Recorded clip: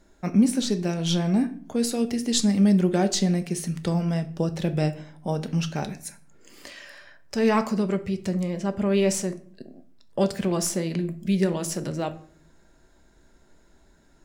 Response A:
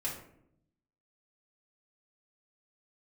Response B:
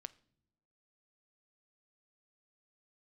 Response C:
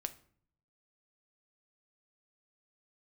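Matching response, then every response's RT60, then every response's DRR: C; 0.70 s, not exponential, 0.55 s; -6.5, 14.5, 9.0 dB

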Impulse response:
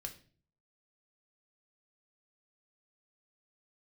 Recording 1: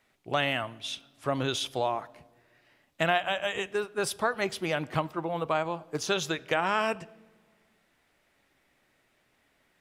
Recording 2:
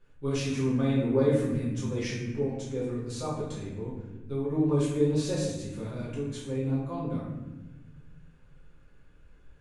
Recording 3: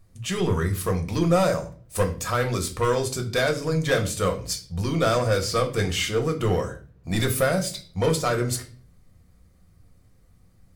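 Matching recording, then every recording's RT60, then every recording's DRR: 3; 1.8, 1.1, 0.45 s; 18.0, -8.5, 3.5 dB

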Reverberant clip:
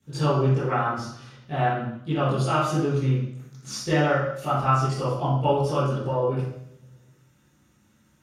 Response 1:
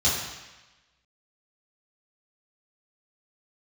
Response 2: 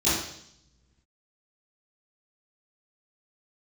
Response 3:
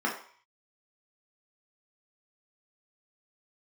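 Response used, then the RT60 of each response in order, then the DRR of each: 2; 1.1, 0.70, 0.50 s; -8.0, -13.5, -3.0 dB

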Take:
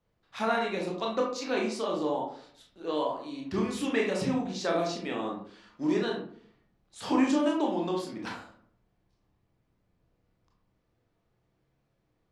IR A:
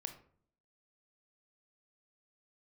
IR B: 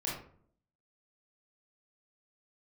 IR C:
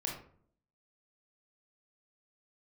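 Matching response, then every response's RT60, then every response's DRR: C; 0.60, 0.55, 0.55 s; 6.5, -5.5, -1.5 dB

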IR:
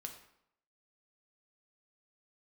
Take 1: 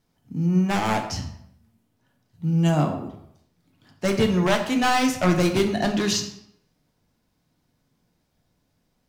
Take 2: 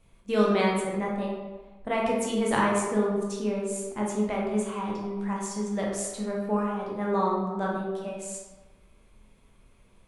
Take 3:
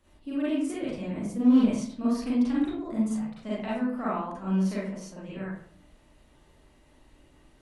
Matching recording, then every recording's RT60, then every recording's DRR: 1; 0.75, 1.3, 0.55 s; 3.5, -3.5, -8.5 dB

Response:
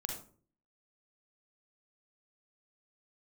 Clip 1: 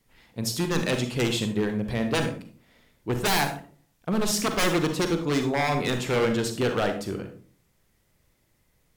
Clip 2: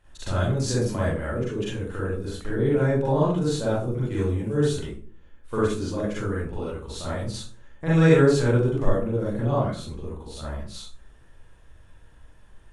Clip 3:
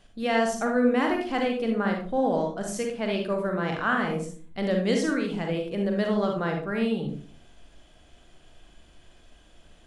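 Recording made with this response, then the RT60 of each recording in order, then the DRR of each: 3; 0.45, 0.45, 0.45 s; 6.0, -8.0, 2.0 dB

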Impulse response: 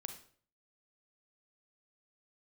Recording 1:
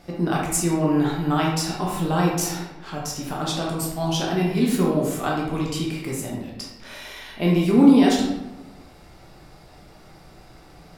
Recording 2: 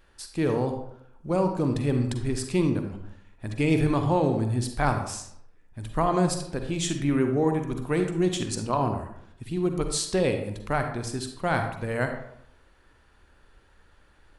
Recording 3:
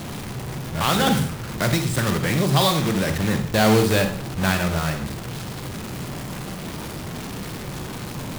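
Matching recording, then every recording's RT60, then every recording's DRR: 3; 1.1, 0.70, 0.50 s; -3.0, 5.5, 6.0 dB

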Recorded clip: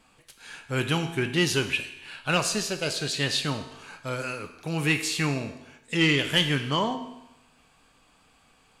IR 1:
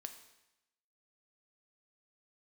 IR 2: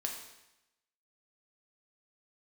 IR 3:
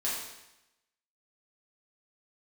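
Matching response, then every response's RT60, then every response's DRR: 1; 0.90, 0.90, 0.90 s; 6.5, 1.0, -7.5 dB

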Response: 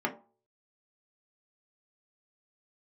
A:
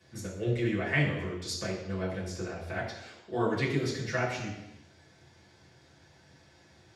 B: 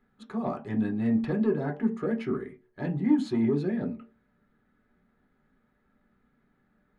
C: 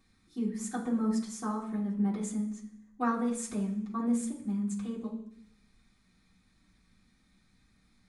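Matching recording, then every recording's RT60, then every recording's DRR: B; 0.90, 0.40, 0.65 s; -8.0, -0.5, -8.5 dB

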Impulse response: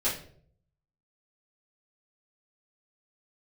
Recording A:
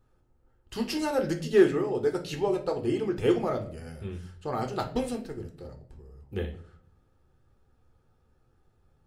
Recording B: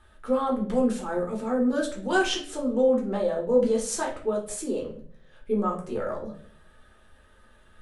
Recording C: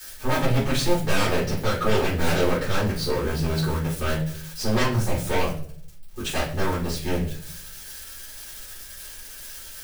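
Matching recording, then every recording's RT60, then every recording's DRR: C; 0.55, 0.55, 0.55 s; 3.5, -2.5, -11.5 dB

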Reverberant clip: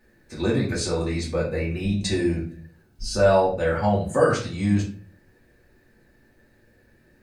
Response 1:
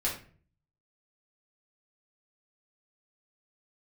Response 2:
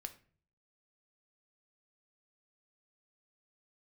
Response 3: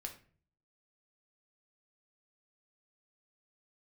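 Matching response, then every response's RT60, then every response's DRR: 1; 0.45, 0.45, 0.45 s; -6.0, 7.5, 2.5 dB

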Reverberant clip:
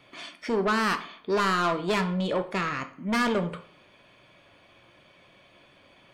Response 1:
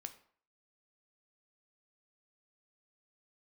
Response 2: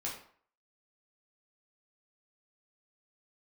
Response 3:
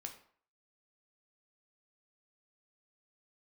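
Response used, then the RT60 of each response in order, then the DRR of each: 1; 0.50, 0.55, 0.55 s; 8.0, -4.5, 3.5 dB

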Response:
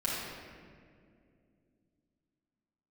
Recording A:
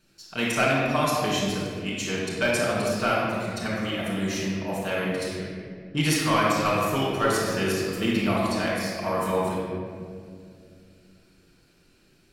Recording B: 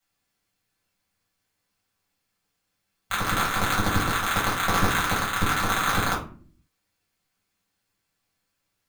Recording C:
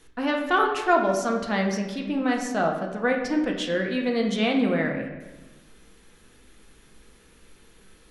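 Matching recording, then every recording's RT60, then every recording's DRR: A; 2.3 s, not exponential, 1.2 s; -7.0, -6.0, 1.0 dB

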